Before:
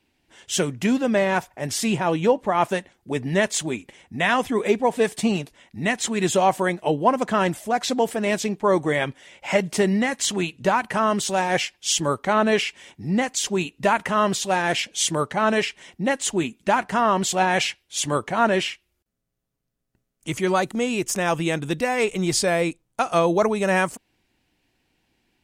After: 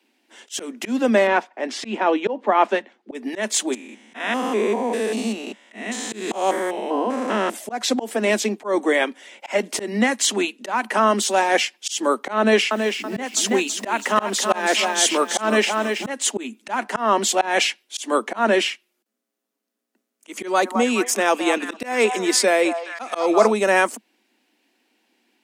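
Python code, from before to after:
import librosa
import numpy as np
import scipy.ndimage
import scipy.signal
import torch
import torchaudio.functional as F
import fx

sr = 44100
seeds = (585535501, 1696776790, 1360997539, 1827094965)

y = fx.bandpass_edges(x, sr, low_hz=140.0, high_hz=3700.0, at=(1.27, 3.15))
y = fx.spec_steps(y, sr, hold_ms=200, at=(3.72, 7.53), fade=0.02)
y = fx.echo_crushed(y, sr, ms=328, feedback_pct=35, bits=8, wet_db=-6.0, at=(12.38, 16.1))
y = fx.echo_stepped(y, sr, ms=210, hz=900.0, octaves=0.7, feedback_pct=70, wet_db=-5.0, at=(20.33, 23.53))
y = scipy.signal.sosfilt(scipy.signal.butter(16, 210.0, 'highpass', fs=sr, output='sos'), y)
y = fx.auto_swell(y, sr, attack_ms=173.0)
y = F.gain(torch.from_numpy(y), 4.0).numpy()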